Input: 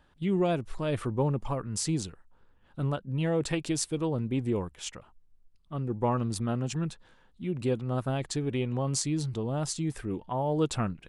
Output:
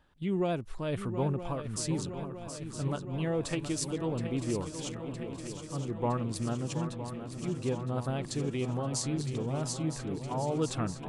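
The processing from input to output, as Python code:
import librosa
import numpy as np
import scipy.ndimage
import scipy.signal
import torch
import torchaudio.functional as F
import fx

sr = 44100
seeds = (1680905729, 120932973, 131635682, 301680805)

y = fx.vibrato(x, sr, rate_hz=12.0, depth_cents=11.0)
y = fx.echo_swing(y, sr, ms=963, ratio=3, feedback_pct=70, wet_db=-10)
y = fx.dmg_crackle(y, sr, seeds[0], per_s=180.0, level_db=-64.0, at=(4.86, 5.75), fade=0.02)
y = y * librosa.db_to_amplitude(-3.5)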